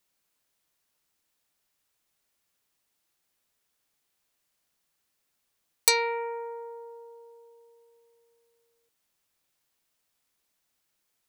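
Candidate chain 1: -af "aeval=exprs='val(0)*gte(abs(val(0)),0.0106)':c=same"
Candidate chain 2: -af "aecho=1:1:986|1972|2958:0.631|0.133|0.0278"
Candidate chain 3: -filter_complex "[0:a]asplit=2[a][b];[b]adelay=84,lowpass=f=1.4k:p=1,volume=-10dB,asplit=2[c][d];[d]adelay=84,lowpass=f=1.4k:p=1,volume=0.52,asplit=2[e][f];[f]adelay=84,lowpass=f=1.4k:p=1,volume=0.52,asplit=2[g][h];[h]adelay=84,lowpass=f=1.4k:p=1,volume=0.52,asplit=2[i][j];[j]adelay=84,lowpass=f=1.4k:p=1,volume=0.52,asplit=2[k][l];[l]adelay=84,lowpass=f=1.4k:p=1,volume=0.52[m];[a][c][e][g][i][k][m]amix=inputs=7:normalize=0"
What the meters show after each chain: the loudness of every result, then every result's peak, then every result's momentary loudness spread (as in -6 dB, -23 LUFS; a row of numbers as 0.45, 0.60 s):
-26.5, -28.5, -26.5 LUFS; -3.5, -3.5, -3.5 dBFS; 19, 19, 20 LU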